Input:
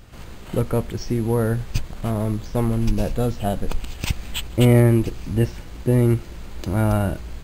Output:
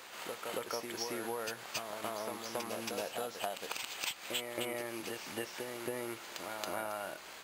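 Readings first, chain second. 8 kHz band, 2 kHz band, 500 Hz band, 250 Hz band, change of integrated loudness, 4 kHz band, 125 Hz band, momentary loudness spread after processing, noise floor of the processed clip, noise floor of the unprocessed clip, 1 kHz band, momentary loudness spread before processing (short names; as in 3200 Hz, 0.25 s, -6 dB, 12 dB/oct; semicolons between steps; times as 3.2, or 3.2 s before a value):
-5.0 dB, -6.5 dB, -15.0 dB, -23.0 dB, -17.0 dB, -5.0 dB, -37.0 dB, 4 LU, -50 dBFS, -38 dBFS, -8.5 dB, 11 LU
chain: HPF 740 Hz 12 dB/oct; compressor 10:1, threshold -35 dBFS, peak gain reduction 14 dB; reverse echo 0.275 s -4 dB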